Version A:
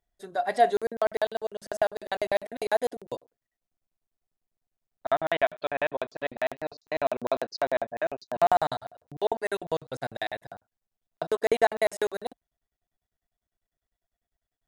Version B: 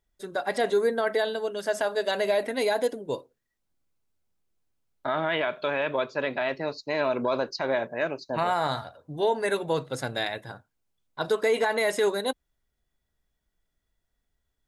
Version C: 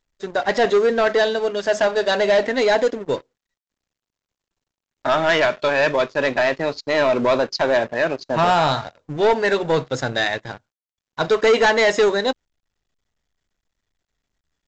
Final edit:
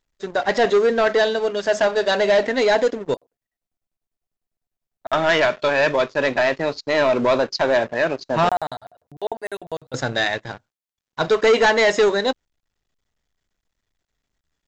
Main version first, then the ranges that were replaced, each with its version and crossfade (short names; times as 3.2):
C
3.14–5.13 from A
8.49–9.94 from A
not used: B